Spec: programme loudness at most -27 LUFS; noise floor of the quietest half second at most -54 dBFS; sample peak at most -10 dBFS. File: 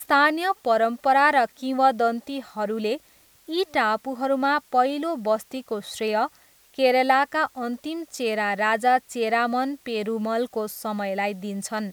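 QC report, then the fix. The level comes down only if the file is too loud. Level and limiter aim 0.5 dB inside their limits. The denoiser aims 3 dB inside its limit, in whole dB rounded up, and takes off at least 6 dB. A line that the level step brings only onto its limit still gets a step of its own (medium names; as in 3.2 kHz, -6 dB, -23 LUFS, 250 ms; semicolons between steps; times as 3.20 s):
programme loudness -24.0 LUFS: fail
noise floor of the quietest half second -57 dBFS: pass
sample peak -6.5 dBFS: fail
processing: trim -3.5 dB; peak limiter -10.5 dBFS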